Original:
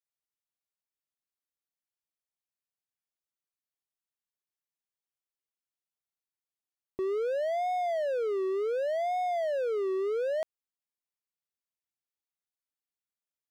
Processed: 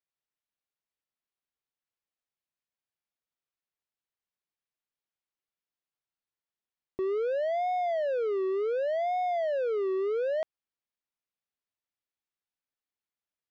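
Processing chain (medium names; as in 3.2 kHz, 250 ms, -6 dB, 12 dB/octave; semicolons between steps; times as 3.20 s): low-pass 4.1 kHz 12 dB/octave; trim +1 dB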